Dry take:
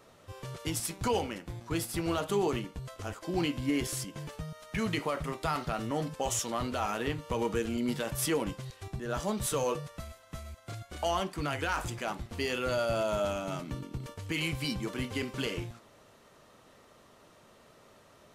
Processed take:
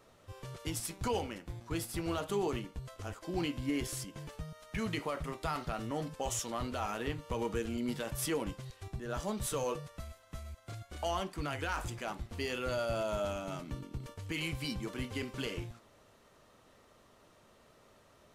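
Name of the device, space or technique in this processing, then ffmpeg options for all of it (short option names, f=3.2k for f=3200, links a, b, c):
low shelf boost with a cut just above: -af "lowshelf=f=88:g=6.5,equalizer=f=150:t=o:w=0.77:g=-2,volume=-4.5dB"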